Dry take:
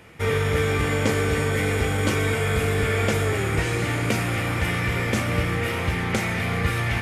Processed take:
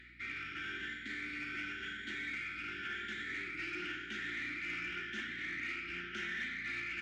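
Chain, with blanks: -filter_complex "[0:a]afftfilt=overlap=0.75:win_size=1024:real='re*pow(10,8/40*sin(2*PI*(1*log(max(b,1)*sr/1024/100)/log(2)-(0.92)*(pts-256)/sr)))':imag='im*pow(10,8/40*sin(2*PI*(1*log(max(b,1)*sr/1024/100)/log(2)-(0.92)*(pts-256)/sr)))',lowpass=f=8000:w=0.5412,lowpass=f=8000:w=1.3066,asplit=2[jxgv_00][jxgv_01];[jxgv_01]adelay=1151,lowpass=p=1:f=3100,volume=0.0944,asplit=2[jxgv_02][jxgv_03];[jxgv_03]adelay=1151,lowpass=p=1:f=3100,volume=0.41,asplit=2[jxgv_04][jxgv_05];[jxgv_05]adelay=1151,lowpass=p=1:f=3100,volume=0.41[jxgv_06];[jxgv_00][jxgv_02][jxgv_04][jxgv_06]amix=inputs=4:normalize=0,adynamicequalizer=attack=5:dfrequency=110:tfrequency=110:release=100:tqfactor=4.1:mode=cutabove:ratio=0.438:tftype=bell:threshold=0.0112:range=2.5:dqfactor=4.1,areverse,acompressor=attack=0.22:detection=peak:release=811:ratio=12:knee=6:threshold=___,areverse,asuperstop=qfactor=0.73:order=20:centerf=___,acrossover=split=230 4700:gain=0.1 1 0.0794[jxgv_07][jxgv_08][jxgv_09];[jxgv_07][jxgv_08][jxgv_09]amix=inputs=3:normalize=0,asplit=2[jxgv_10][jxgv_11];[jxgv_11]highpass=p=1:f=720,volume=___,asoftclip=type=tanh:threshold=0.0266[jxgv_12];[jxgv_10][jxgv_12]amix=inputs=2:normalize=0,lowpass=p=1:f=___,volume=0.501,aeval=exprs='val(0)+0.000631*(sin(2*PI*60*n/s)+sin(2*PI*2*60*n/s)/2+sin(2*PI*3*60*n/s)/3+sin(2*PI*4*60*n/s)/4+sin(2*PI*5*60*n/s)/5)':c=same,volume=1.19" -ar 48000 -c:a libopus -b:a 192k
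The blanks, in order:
0.0224, 710, 3.16, 4600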